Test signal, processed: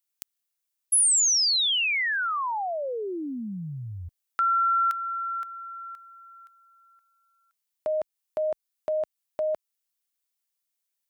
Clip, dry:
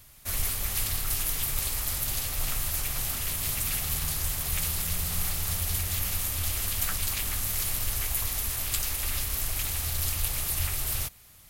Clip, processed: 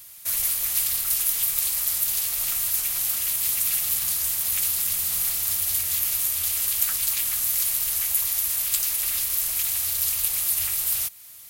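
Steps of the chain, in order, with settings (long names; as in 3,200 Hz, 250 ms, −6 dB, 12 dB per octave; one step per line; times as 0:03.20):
spectral tilt +3 dB per octave
in parallel at −2.5 dB: downward compressor, threshold −32 dBFS
on the sum: level −4.5 dB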